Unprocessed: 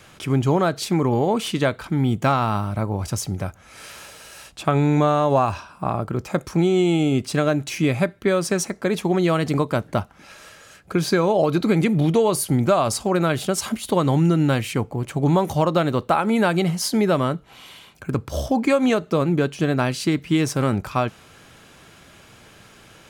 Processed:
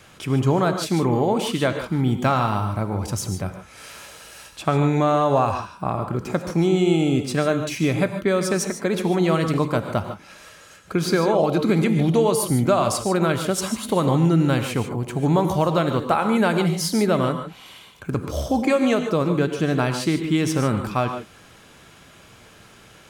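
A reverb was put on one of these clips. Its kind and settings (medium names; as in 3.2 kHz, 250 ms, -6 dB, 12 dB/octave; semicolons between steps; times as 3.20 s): gated-style reverb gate 170 ms rising, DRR 7 dB; trim -1 dB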